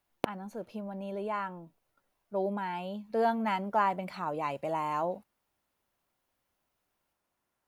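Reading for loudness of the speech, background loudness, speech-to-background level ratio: -33.5 LUFS, -38.5 LUFS, 5.0 dB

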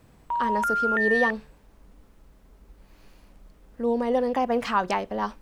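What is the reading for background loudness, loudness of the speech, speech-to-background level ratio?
-25.0 LUFS, -27.0 LUFS, -2.0 dB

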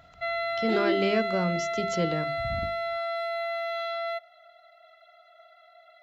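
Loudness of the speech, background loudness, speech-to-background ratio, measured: -29.5 LUFS, -30.5 LUFS, 1.0 dB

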